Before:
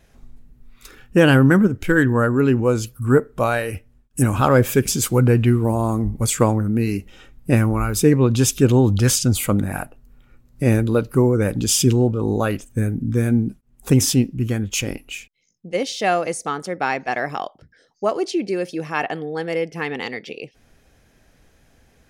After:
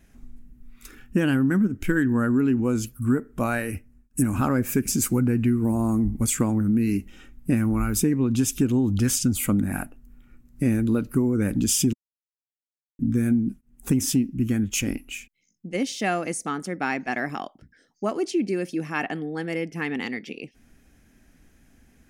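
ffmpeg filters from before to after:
-filter_complex "[0:a]asettb=1/sr,asplit=3[a][b][c];[a]atrim=end=3.414[d];[b]atrim=start=3.41:end=6.12,asetpts=PTS-STARTPTS,afade=t=in:d=0.004:c=qsin,afade=t=out:st=2.706:d=0.004:c=qsin,equalizer=f=3.3k:t=o:w=0.27:g=-9.5[e];[c]atrim=start=6.116[f];[d][e]acrossfade=d=0.004:c1=hsin:c2=qsin[g];[g][f]acrossfade=d=0.004:c1=qsin:c2=hsin,asplit=3[h][i][j];[h]atrim=end=11.93,asetpts=PTS-STARTPTS,afade=t=out:st=11.926:d=0.004:c=hsin[k];[i]atrim=start=11.93:end=12.99,asetpts=PTS-STARTPTS,volume=0[l];[j]atrim=start=12.99,asetpts=PTS-STARTPTS,afade=t=in:d=0.004:c=hsin[m];[k][l][m]concat=n=3:v=0:a=1,equalizer=f=125:t=o:w=1:g=-5,equalizer=f=250:t=o:w=1:g=7,equalizer=f=500:t=o:w=1:g=-9,equalizer=f=1k:t=o:w=1:g=-5,equalizer=f=4k:t=o:w=1:g=-7,acompressor=threshold=-18dB:ratio=6"

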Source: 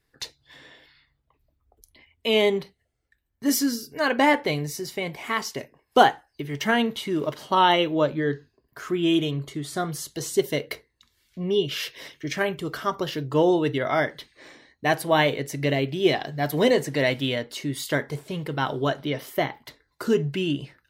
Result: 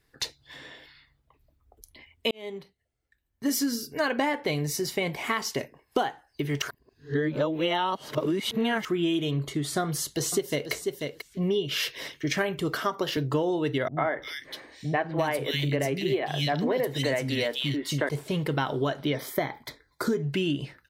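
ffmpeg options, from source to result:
-filter_complex "[0:a]asplit=2[a][b];[b]afade=t=in:st=9.83:d=0.01,afade=t=out:st=10.72:d=0.01,aecho=0:1:490|980:0.298538|0.0298538[c];[a][c]amix=inputs=2:normalize=0,asettb=1/sr,asplit=3[d][e][f];[d]atrim=end=12.754[g];[e]atrim=start=12.75:end=13.17,asetpts=PTS-STARTPTS,afade=t=in:d=0.004:c=qsin,afade=t=out:st=0.416:d=0.004:c=qsin,highpass=200[h];[f]atrim=start=13.166[i];[g][h]acrossfade=d=0.004:c1=hsin:c2=qsin[j];[j][i]acrossfade=d=0.004:c1=qsin:c2=hsin,asettb=1/sr,asplit=3[k][l][m];[k]atrim=end=13.884[n];[l]atrim=start=13.88:end=18.09,asetpts=PTS-STARTPTS,afade=t=in:d=0.004:c=qsin,afade=t=out:st=4.206:d=0.004:c=qsin,acrossover=split=260|2600[o][p][q];[p]adelay=90[r];[q]adelay=340[s];[o][r][s]amix=inputs=3:normalize=0,atrim=end_sample=185661[t];[m]atrim=start=18.086[u];[n][t]acrossfade=d=0.004:c1=hsin:c2=qsin[v];[v][u]acrossfade=d=0.004:c1=qsin:c2=hsin,asettb=1/sr,asplit=3[w][x][y];[w]atrim=end=19.154[z];[x]atrim=start=19.15:end=20.23,asetpts=PTS-STARTPTS,afade=t=in:d=0.004:c=qsin,afade=t=out:st=1.076:d=0.004:c=qsin,asuperstop=centerf=2800:order=8:qfactor=5[aa];[y]atrim=start=20.226[ab];[z][aa]acrossfade=d=0.004:c1=hsin:c2=qsin[ac];[ac][ab]acrossfade=d=0.004:c1=qsin:c2=hsin,asplit=4[ad][ae][af][ag];[ad]atrim=end=2.31,asetpts=PTS-STARTPTS,afade=t=out:st=2.306:d=0.004:c=hsin[ah];[ae]atrim=start=2.31:end=6.622,asetpts=PTS-STARTPTS,afade=t=in:d=2.45:c=qsin[ai];[af]atrim=start=6.618:end=8.852,asetpts=PTS-STARTPTS,areverse[aj];[ag]atrim=start=8.848[ak];[ah][ai]concat=n=2:v=0:a=1[al];[al][aj]acrossfade=d=0.004:c1=hsin:c2=hsin[am];[am][ak]acrossfade=d=0.004:c1=hsin:c2=hsin,acompressor=threshold=-26dB:ratio=16,volume=3.5dB"

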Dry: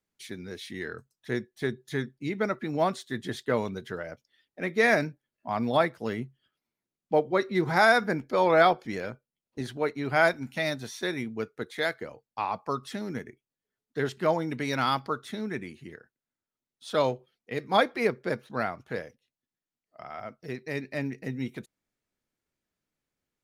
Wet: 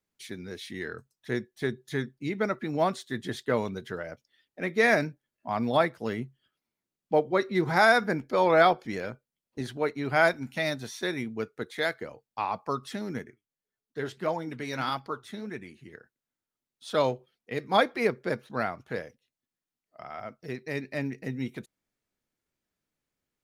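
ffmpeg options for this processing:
-filter_complex "[0:a]asplit=3[a][b][c];[a]afade=t=out:st=13.24:d=0.02[d];[b]flanger=delay=1.1:depth=9:regen=64:speed=1.6:shape=sinusoidal,afade=t=in:st=13.24:d=0.02,afade=t=out:st=15.93:d=0.02[e];[c]afade=t=in:st=15.93:d=0.02[f];[d][e][f]amix=inputs=3:normalize=0"

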